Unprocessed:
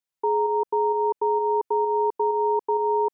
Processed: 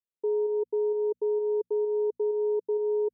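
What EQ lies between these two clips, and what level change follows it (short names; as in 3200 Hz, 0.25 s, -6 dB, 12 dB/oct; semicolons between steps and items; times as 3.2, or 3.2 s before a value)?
ladder low-pass 520 Hz, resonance 55%; notches 60/120/180/240 Hz; 0.0 dB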